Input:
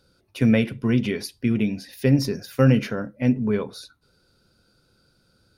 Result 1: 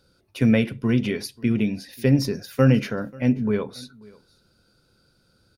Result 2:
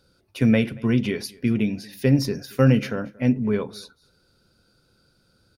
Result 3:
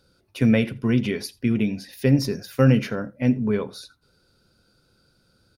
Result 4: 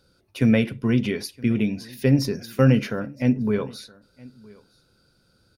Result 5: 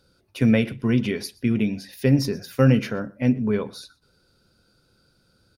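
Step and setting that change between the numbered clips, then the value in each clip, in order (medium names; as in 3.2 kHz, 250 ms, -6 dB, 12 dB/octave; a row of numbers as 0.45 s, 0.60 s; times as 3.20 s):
delay, time: 537 ms, 230 ms, 83 ms, 967 ms, 123 ms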